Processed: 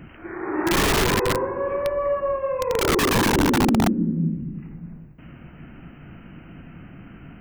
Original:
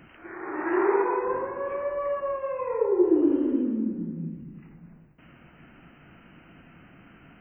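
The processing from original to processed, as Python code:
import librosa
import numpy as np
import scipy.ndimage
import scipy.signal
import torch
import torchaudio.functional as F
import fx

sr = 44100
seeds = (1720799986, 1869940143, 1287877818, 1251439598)

y = (np.mod(10.0 ** (20.5 / 20.0) * x + 1.0, 2.0) - 1.0) / 10.0 ** (20.5 / 20.0)
y = fx.low_shelf(y, sr, hz=270.0, db=11.0)
y = F.gain(torch.from_numpy(y), 3.5).numpy()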